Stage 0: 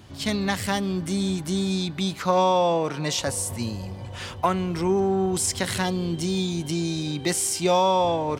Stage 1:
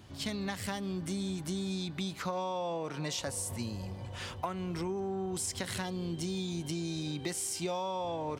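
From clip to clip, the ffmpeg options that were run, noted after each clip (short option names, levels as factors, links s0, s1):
-af "acompressor=threshold=0.0501:ratio=6,volume=0.501"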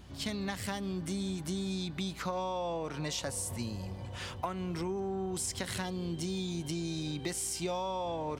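-af "aeval=exprs='val(0)+0.00224*(sin(2*PI*60*n/s)+sin(2*PI*2*60*n/s)/2+sin(2*PI*3*60*n/s)/3+sin(2*PI*4*60*n/s)/4+sin(2*PI*5*60*n/s)/5)':c=same"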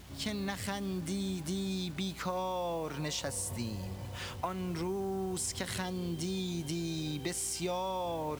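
-af "acrusher=bits=8:mix=0:aa=0.000001"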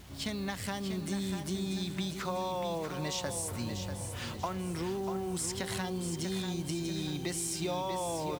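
-af "aecho=1:1:641|1282|1923|2564|3205:0.422|0.181|0.078|0.0335|0.0144"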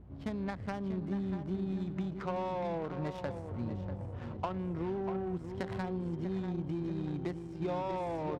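-af "adynamicsmooth=sensitivity=3:basefreq=520"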